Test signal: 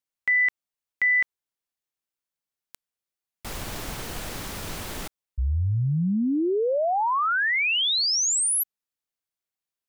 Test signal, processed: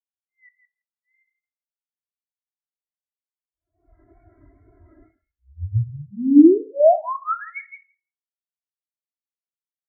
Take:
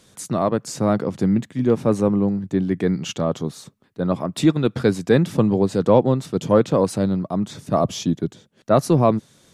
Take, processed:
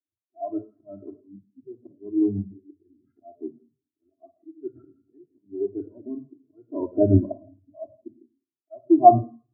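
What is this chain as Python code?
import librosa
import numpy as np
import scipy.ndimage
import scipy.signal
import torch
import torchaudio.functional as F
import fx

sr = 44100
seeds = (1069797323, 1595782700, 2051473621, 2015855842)

p1 = scipy.signal.sosfilt(scipy.signal.butter(2, 49.0, 'highpass', fs=sr, output='sos'), x)
p2 = p1 + 0.99 * np.pad(p1, (int(2.9 * sr / 1000.0), 0))[:len(p1)]
p3 = fx.rider(p2, sr, range_db=5, speed_s=0.5)
p4 = fx.auto_swell(p3, sr, attack_ms=602.0)
p5 = scipy.signal.sosfilt(scipy.signal.cheby1(6, 3, 2200.0, 'lowpass', fs=sr, output='sos'), p4)
p6 = fx.wow_flutter(p5, sr, seeds[0], rate_hz=2.1, depth_cents=91.0)
p7 = p6 + fx.echo_wet_highpass(p6, sr, ms=165, feedback_pct=31, hz=1600.0, wet_db=-3.0, dry=0)
p8 = fx.room_shoebox(p7, sr, seeds[1], volume_m3=2100.0, walls='furnished', distance_m=2.9)
p9 = fx.spectral_expand(p8, sr, expansion=2.5)
y = p9 * 10.0 ** (5.5 / 20.0)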